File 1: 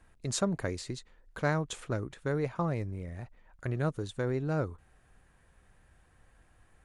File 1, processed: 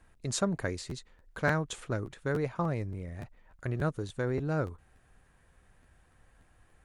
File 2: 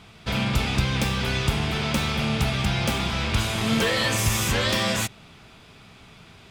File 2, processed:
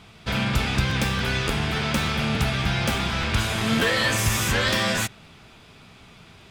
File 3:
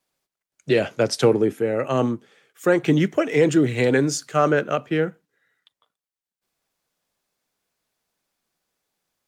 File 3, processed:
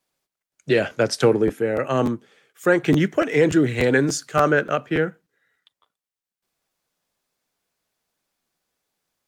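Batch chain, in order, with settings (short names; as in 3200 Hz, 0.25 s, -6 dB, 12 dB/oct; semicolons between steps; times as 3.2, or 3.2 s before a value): dynamic EQ 1600 Hz, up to +5 dB, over -43 dBFS, Q 2.7; crackling interface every 0.29 s, samples 512, repeat, from 0.89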